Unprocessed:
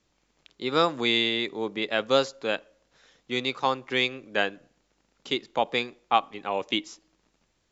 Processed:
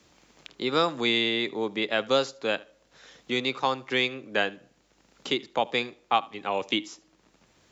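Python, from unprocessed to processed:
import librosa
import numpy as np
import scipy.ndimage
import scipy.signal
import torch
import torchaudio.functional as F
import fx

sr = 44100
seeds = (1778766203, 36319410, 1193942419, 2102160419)

y = scipy.signal.sosfilt(scipy.signal.butter(2, 54.0, 'highpass', fs=sr, output='sos'), x)
y = fx.echo_feedback(y, sr, ms=76, feedback_pct=15, wet_db=-23.0)
y = fx.band_squash(y, sr, depth_pct=40)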